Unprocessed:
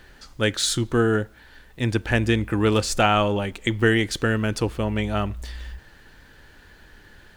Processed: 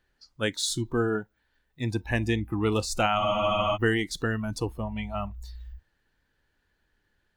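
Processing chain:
noise reduction from a noise print of the clip's start 18 dB
frozen spectrum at 0:03.21, 0.55 s
level −5.5 dB

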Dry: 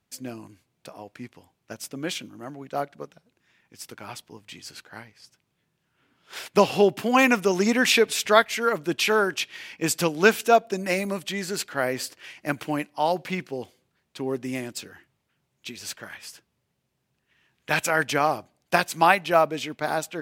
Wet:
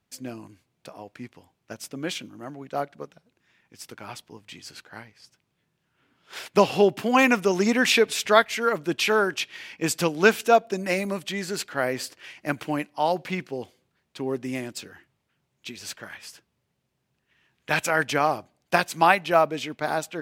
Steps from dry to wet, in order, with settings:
high-shelf EQ 7,600 Hz −4 dB

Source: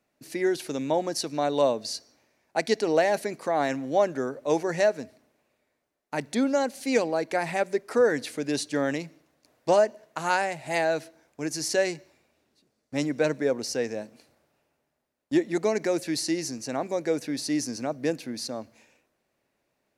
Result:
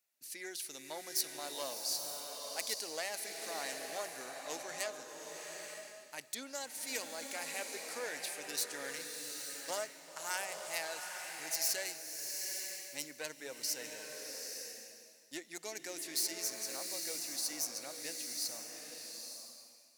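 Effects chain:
phase distortion by the signal itself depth 0.074 ms
first-order pre-emphasis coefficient 0.97
slow-attack reverb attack 890 ms, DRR 2.5 dB

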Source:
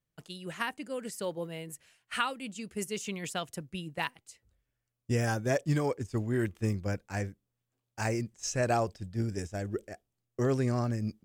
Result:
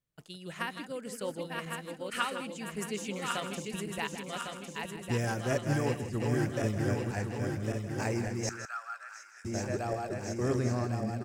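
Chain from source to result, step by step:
feedback delay that plays each chunk backwards 552 ms, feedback 73%, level −3.5 dB
0:05.30–0:06.53: notch filter 3,600 Hz, Q 15
0:08.49–0:09.45: four-pole ladder high-pass 1,300 Hz, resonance 85%
single-tap delay 160 ms −11 dB
level −2.5 dB

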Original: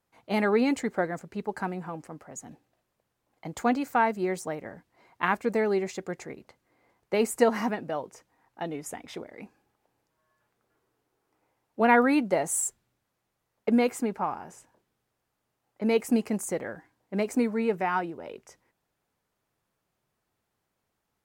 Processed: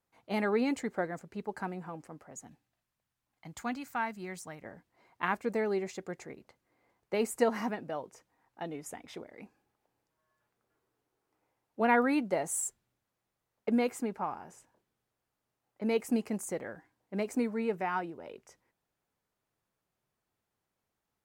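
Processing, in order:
0:02.47–0:04.64: parametric band 460 Hz −11.5 dB 1.6 octaves
level −5.5 dB

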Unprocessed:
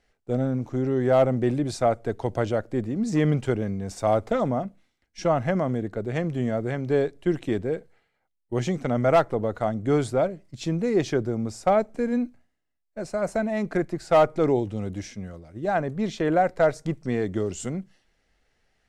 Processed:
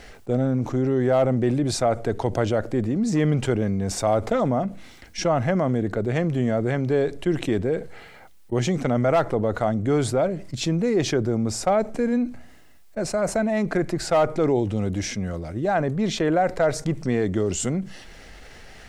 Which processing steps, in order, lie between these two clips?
envelope flattener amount 50%
level −2 dB

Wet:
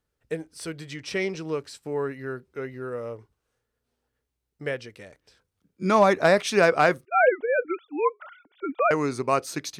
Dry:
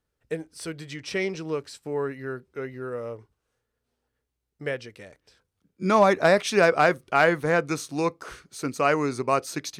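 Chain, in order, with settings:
0:07.05–0:08.91: three sine waves on the formant tracks

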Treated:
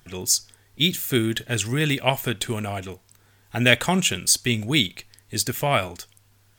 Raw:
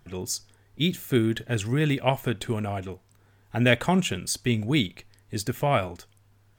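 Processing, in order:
high-shelf EQ 2,100 Hz +11.5 dB

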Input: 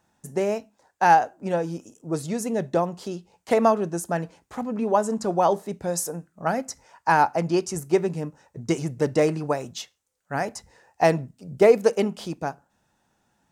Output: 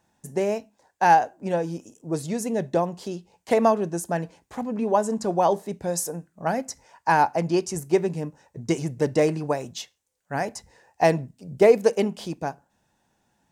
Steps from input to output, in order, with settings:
parametric band 1,300 Hz −7.5 dB 0.21 octaves

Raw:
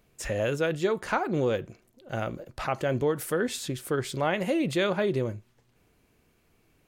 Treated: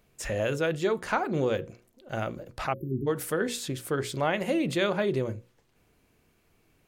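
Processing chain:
time-frequency box erased 0:02.73–0:03.07, 410–11,000 Hz
mains-hum notches 60/120/180/240/300/360/420/480/540 Hz

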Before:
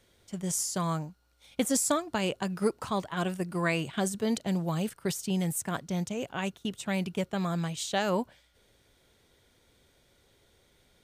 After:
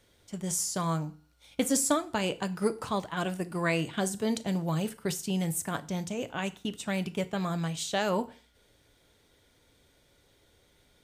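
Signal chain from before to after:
feedback delay network reverb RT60 0.41 s, low-frequency decay 1.05×, high-frequency decay 0.95×, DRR 11 dB

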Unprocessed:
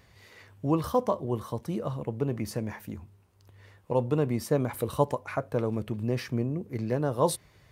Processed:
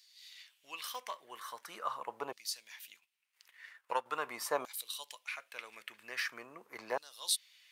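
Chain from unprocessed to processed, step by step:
0:02.95–0:04.06: transient designer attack +6 dB, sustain −11 dB
auto-filter high-pass saw down 0.43 Hz 890–4,500 Hz

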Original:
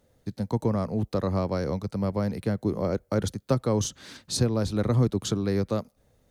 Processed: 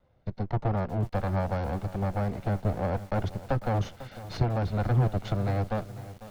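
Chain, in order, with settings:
lower of the sound and its delayed copy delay 1.4 ms
high-frequency loss of the air 270 metres
feedback echo at a low word length 498 ms, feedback 55%, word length 7 bits, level −14.5 dB

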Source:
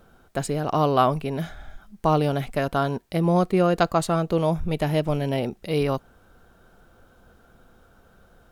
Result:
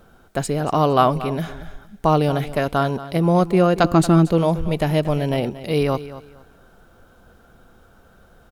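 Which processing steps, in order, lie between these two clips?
0:03.84–0:04.29: low shelf with overshoot 400 Hz +6 dB, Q 3
on a send: repeating echo 231 ms, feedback 24%, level −15 dB
on the sum: level +3.5 dB

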